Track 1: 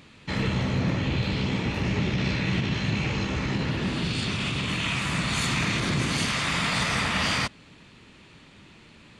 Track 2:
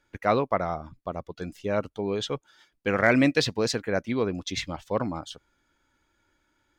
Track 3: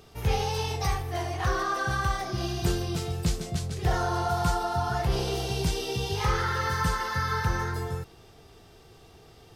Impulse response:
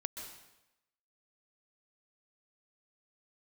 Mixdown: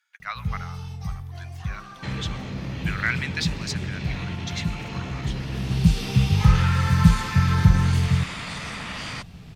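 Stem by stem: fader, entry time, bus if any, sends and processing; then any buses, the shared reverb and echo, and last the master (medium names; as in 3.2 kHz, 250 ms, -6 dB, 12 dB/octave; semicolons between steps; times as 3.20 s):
-2.0 dB, 1.75 s, no send, compression 3:1, threshold -30 dBFS, peak gain reduction 7.5 dB
+0.5 dB, 0.00 s, send -13.5 dB, high-pass 1.3 kHz 24 dB/octave; random flutter of the level, depth 55%
-0.5 dB, 0.20 s, no send, resonant low shelf 260 Hz +11 dB, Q 3; auto duck -14 dB, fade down 0.35 s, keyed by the second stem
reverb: on, RT60 0.95 s, pre-delay 119 ms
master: none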